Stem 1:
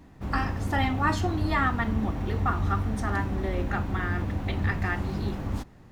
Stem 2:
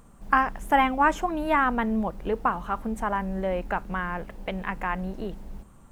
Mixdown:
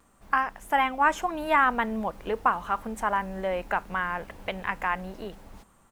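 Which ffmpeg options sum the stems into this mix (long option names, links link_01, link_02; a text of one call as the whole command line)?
ffmpeg -i stem1.wav -i stem2.wav -filter_complex "[0:a]volume=-13dB[link_01];[1:a]adelay=3.6,volume=-2dB,asplit=2[link_02][link_03];[link_03]apad=whole_len=265341[link_04];[link_01][link_04]sidechaincompress=threshold=-37dB:ratio=8:attack=16:release=541[link_05];[link_05][link_02]amix=inputs=2:normalize=0,lowshelf=frequency=390:gain=-12,dynaudnorm=framelen=410:gausssize=5:maxgain=5.5dB" out.wav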